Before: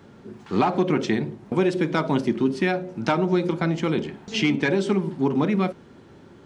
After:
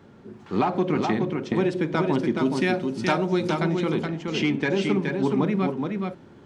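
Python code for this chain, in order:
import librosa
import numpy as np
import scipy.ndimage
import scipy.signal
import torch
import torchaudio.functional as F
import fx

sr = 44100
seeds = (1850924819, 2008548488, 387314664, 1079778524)

y = fx.high_shelf(x, sr, hz=4000.0, db=fx.steps((0.0, -5.0), (2.35, 7.5), (3.63, -4.5)))
y = y + 10.0 ** (-4.5 / 20.0) * np.pad(y, (int(422 * sr / 1000.0), 0))[:len(y)]
y = F.gain(torch.from_numpy(y), -2.0).numpy()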